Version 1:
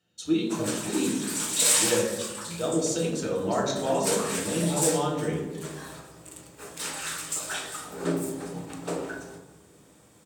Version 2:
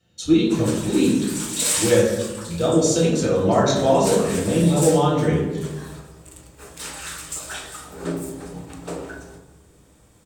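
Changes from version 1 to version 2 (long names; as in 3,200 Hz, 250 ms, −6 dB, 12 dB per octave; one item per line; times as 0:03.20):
speech: send +9.0 dB
master: remove high-pass filter 140 Hz 12 dB per octave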